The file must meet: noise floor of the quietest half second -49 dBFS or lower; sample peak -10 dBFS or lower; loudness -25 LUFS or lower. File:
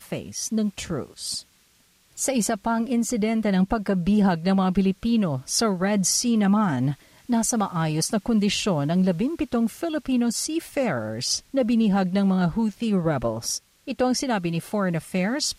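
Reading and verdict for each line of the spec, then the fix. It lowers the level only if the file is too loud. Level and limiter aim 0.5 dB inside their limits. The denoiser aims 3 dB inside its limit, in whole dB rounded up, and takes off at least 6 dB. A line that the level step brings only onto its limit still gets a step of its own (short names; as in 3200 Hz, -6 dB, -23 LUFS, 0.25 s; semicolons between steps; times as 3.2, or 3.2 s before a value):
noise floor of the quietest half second -61 dBFS: OK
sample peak -10.5 dBFS: OK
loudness -23.5 LUFS: fail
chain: gain -2 dB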